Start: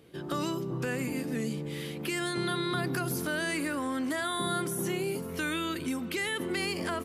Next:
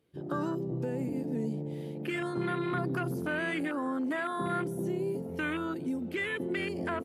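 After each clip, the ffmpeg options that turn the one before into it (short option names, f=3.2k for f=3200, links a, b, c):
-af "afwtdn=0.02"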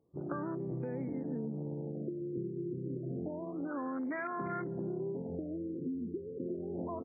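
-af "acompressor=threshold=-34dB:ratio=6,afftfilt=real='re*lt(b*sr/1024,500*pow(2500/500,0.5+0.5*sin(2*PI*0.29*pts/sr)))':imag='im*lt(b*sr/1024,500*pow(2500/500,0.5+0.5*sin(2*PI*0.29*pts/sr)))':win_size=1024:overlap=0.75"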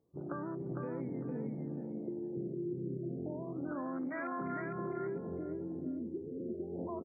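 -af "aecho=1:1:455|910|1365:0.596|0.119|0.0238,volume=-2.5dB"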